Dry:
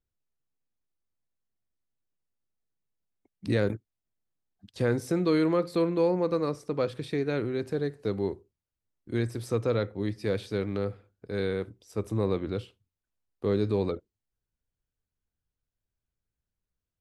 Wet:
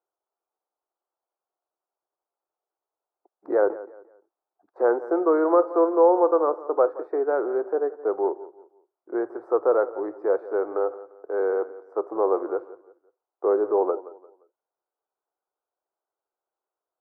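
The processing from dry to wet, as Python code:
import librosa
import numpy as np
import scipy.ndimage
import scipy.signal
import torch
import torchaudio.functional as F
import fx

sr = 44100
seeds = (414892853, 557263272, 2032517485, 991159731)

y = scipy.signal.sosfilt(scipy.signal.ellip(3, 1.0, 40, [350.0, 1400.0], 'bandpass', fs=sr, output='sos'), x)
y = fx.peak_eq(y, sr, hz=800.0, db=12.0, octaves=1.2)
y = fx.echo_feedback(y, sr, ms=174, feedback_pct=32, wet_db=-17)
y = y * librosa.db_to_amplitude(3.5)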